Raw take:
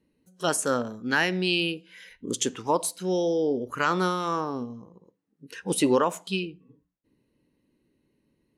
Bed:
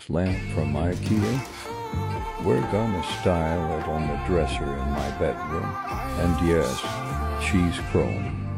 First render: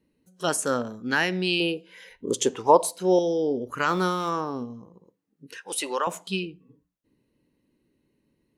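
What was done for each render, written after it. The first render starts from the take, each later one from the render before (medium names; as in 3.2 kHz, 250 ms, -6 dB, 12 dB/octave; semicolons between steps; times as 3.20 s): 1.60–3.19 s: high-order bell 620 Hz +8.5 dB; 3.88–4.30 s: companding laws mixed up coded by mu; 5.57–6.07 s: high-pass 710 Hz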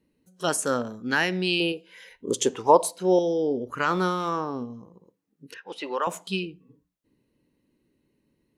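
1.72–2.28 s: bass shelf 400 Hz -6 dB; 2.88–4.73 s: treble shelf 6 kHz -7 dB; 5.54–6.02 s: distance through air 250 m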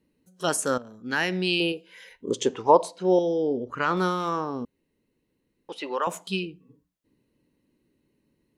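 0.78–1.34 s: fade in, from -15.5 dB; 2.29–3.97 s: distance through air 87 m; 4.65–5.69 s: room tone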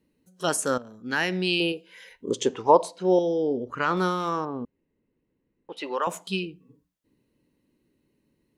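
4.45–5.77 s: distance through air 440 m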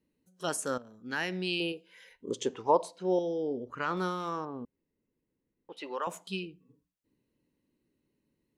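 trim -7.5 dB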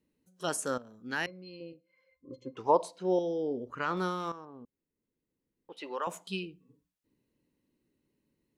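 1.26–2.57 s: pitch-class resonator C, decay 0.11 s; 4.32–6.08 s: fade in, from -12 dB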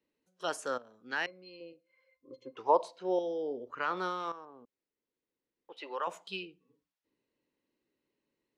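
three-band isolator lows -14 dB, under 360 Hz, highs -14 dB, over 5.7 kHz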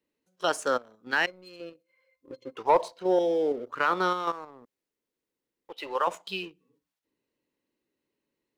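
waveshaping leveller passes 1; in parallel at +0.5 dB: level held to a coarse grid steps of 16 dB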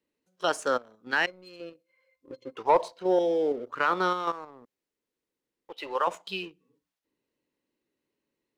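treble shelf 9.8 kHz -5 dB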